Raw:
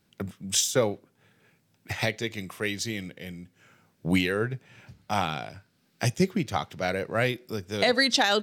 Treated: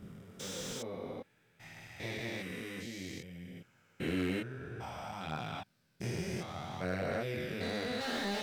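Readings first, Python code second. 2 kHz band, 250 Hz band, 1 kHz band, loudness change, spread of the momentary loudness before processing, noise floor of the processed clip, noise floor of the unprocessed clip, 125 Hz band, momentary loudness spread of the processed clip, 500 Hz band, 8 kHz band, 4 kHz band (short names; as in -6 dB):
-12.0 dB, -8.5 dB, -11.5 dB, -12.0 dB, 17 LU, -70 dBFS, -69 dBFS, -9.5 dB, 15 LU, -10.5 dB, -16.5 dB, -14.0 dB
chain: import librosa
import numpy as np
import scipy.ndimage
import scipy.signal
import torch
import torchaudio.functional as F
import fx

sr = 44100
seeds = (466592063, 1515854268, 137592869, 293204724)

y = fx.spec_steps(x, sr, hold_ms=400)
y = fx.chorus_voices(y, sr, voices=2, hz=0.28, base_ms=24, depth_ms=2.3, mix_pct=50)
y = fx.slew_limit(y, sr, full_power_hz=48.0)
y = F.gain(torch.from_numpy(y), -2.0).numpy()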